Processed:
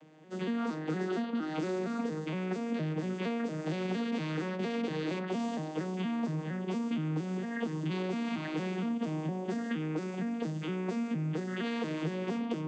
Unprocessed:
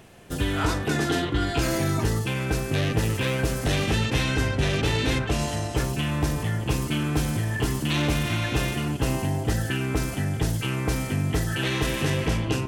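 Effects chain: vocoder on a broken chord minor triad, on D#3, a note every 232 ms; high-pass 190 Hz 24 dB/octave; compression, threshold -28 dBFS, peak gain reduction 6.5 dB; trim -1.5 dB

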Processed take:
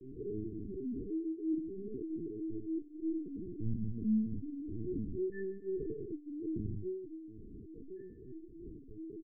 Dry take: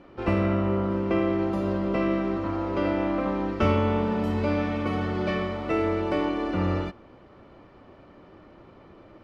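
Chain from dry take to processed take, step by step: tracing distortion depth 0.12 ms; treble shelf 2.1 kHz +11 dB; compression 5:1, threshold -37 dBFS, peak gain reduction 18 dB; harmony voices -12 st -12 dB, +4 st -3 dB; loudest bins only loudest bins 2; chorus 0.81 Hz, delay 19 ms, depth 5.3 ms; flutter echo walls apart 3.2 m, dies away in 0.81 s; LPC vocoder at 8 kHz pitch kept; brick-wall FIR band-stop 470–1600 Hz; trim +7 dB

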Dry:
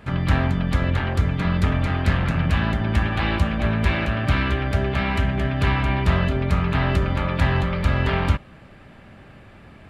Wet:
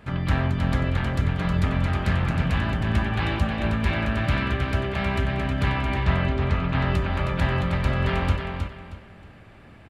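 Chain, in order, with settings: 5.99–6.80 s: low-pass 5.1 kHz 12 dB/octave; feedback delay 315 ms, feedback 28%, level -6 dB; trim -3.5 dB

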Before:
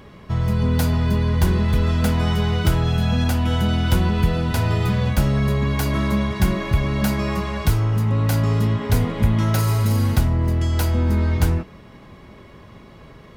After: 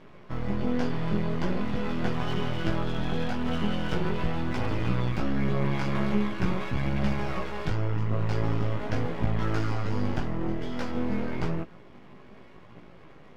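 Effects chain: cabinet simulation 120–4700 Hz, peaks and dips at 150 Hz +3 dB, 350 Hz +4 dB, 3.9 kHz -9 dB; half-wave rectifier; chorus voices 2, 0.43 Hz, delay 18 ms, depth 2.4 ms

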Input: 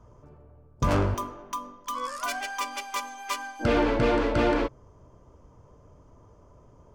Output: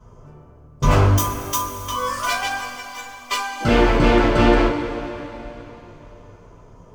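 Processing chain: tracing distortion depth 0.027 ms; 1.17–1.77 s: RIAA curve recording; 2.57–3.31 s: inharmonic resonator 240 Hz, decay 0.2 s, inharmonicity 0.002; two-slope reverb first 0.25 s, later 3.5 s, from -18 dB, DRR -9.5 dB; trim -1 dB

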